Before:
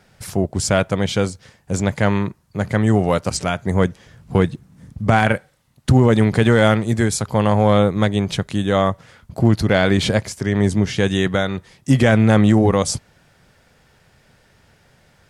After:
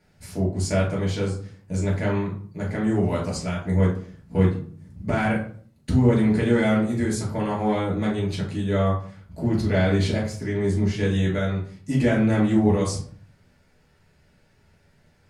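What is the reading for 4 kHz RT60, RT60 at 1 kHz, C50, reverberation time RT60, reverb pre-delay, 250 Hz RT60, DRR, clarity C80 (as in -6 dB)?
0.35 s, 0.45 s, 6.0 dB, 0.50 s, 3 ms, 0.65 s, -5.0 dB, 11.5 dB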